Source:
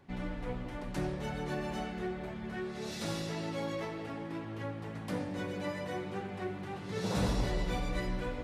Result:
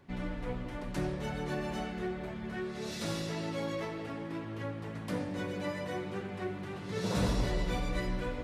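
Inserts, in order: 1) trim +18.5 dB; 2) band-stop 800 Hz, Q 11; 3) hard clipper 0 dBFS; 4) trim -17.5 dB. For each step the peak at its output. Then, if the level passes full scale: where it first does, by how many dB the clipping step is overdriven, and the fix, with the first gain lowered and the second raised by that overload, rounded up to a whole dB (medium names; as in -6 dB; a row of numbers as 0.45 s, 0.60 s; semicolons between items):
-1.0 dBFS, -1.5 dBFS, -1.5 dBFS, -19.0 dBFS; nothing clips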